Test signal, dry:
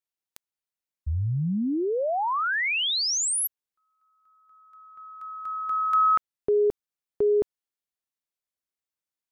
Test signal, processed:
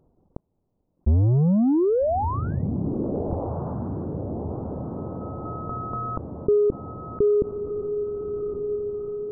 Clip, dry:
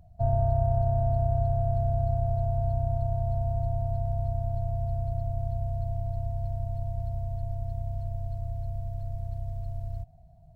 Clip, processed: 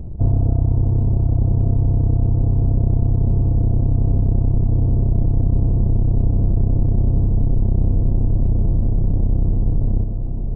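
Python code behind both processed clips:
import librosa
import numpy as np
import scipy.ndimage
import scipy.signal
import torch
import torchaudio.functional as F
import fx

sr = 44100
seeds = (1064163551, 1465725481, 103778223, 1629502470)

y = fx.halfwave_hold(x, sr)
y = fx.dereverb_blind(y, sr, rt60_s=0.73)
y = fx.low_shelf(y, sr, hz=310.0, db=9.0)
y = fx.rider(y, sr, range_db=4, speed_s=0.5)
y = scipy.ndimage.gaussian_filter1d(y, 13.0, mode='constant')
y = fx.echo_diffused(y, sr, ms=1282, feedback_pct=45, wet_db=-14)
y = fx.env_flatten(y, sr, amount_pct=50)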